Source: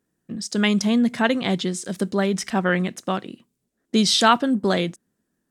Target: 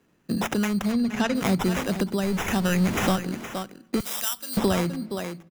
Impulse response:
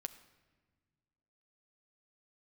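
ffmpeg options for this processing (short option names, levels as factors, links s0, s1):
-filter_complex "[0:a]asettb=1/sr,asplit=3[s0][s1][s2];[s0]atrim=end=2.234[s3];[s1]atrim=start=2.23:end=3.16,asetpts=PTS-STARTPTS,afade=t=in:d=0.004:c=qsin,afade=t=out:st=0.926:d=0.004:c=qsin,aeval=exprs='val(0)+0.5*0.0596*sgn(val(0))':c=same[s4];[s2]atrim=start=3.156[s5];[s3][s4]acrossfade=d=0.004:c1=hsin:c2=qsin[s6];[s6][s5]acrossfade=d=0.004:c1=qsin:c2=hsin,acrusher=samples=10:mix=1:aa=0.000001,aecho=1:1:468:0.158,asettb=1/sr,asplit=3[s7][s8][s9];[s7]atrim=end=0.924[s10];[s8]atrim=start=0.92:end=1.35,asetpts=PTS-STARTPTS,afade=t=in:d=0.004:c=qsin,afade=t=out:st=0.426:d=0.004:c=qsin,acrossover=split=6900[s11][s12];[s12]acompressor=threshold=0.00398:ratio=4:attack=1:release=60[s13];[s11][s13]amix=inputs=2:normalize=0[s14];[s9]atrim=start=1.346[s15];[s10][s14]acrossfade=d=0.004:c1=hsin:c2=qsin[s16];[s16][s15]acrossfade=d=0.004:c1=qsin:c2=hsin,bandreject=f=55.54:t=h:w=4,bandreject=f=111.08:t=h:w=4,bandreject=f=166.62:t=h:w=4,bandreject=f=222.16:t=h:w=4,bandreject=f=277.7:t=h:w=4,bandreject=f=333.24:t=h:w=4,asettb=1/sr,asplit=3[s17][s18][s19];[s17]atrim=end=4.004[s20];[s18]atrim=start=4:end=4.57,asetpts=PTS-STARTPTS,afade=t=in:d=0.004:c=qsin,afade=t=out:st=0.566:d=0.004:c=qsin,aderivative[s21];[s19]atrim=start=4.566[s22];[s20][s21]acrossfade=d=0.004:c1=hsin:c2=qsin[s23];[s23][s22]acrossfade=d=0.004:c1=qsin:c2=hsin,asplit=2[s24][s25];[1:a]atrim=start_sample=2205[s26];[s25][s26]afir=irnorm=-1:irlink=0,volume=0.355[s27];[s24][s27]amix=inputs=2:normalize=0,acrossover=split=120[s28][s29];[s29]acompressor=threshold=0.0316:ratio=6[s30];[s28][s30]amix=inputs=2:normalize=0,tremolo=f=0.65:d=0.36,volume=2.66"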